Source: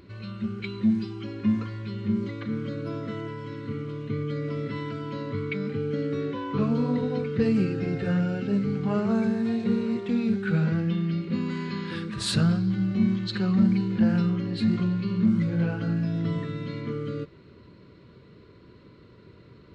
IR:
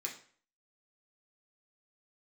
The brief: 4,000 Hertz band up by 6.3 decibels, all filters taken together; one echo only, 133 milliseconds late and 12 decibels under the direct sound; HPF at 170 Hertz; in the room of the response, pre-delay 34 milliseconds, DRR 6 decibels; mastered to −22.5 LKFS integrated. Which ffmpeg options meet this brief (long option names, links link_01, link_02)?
-filter_complex "[0:a]highpass=170,equalizer=frequency=4000:width_type=o:gain=7,aecho=1:1:133:0.251,asplit=2[link_01][link_02];[1:a]atrim=start_sample=2205,adelay=34[link_03];[link_02][link_03]afir=irnorm=-1:irlink=0,volume=-6dB[link_04];[link_01][link_04]amix=inputs=2:normalize=0,volume=5.5dB"